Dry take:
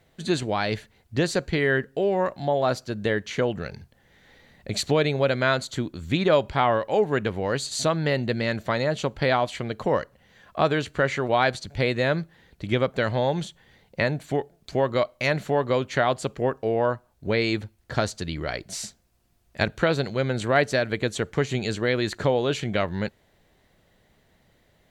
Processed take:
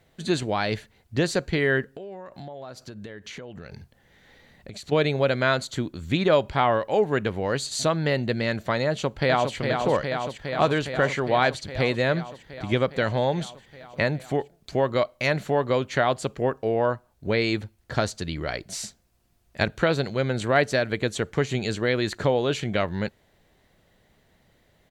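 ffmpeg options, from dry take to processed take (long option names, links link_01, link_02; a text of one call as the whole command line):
ffmpeg -i in.wav -filter_complex "[0:a]asplit=3[link_01][link_02][link_03];[link_01]afade=type=out:start_time=1.93:duration=0.02[link_04];[link_02]acompressor=threshold=-35dB:ratio=12:attack=3.2:release=140:knee=1:detection=peak,afade=type=in:start_time=1.93:duration=0.02,afade=type=out:start_time=4.91:duration=0.02[link_05];[link_03]afade=type=in:start_time=4.91:duration=0.02[link_06];[link_04][link_05][link_06]amix=inputs=3:normalize=0,asplit=2[link_07][link_08];[link_08]afade=type=in:start_time=8.88:duration=0.01,afade=type=out:start_time=9.55:duration=0.01,aecho=0:1:410|820|1230|1640|2050|2460|2870|3280|3690|4100|4510|4920:0.562341|0.449873|0.359898|0.287919|0.230335|0.184268|0.147414|0.117932|0.0943452|0.0754762|0.0603809|0.0483048[link_09];[link_07][link_09]amix=inputs=2:normalize=0" out.wav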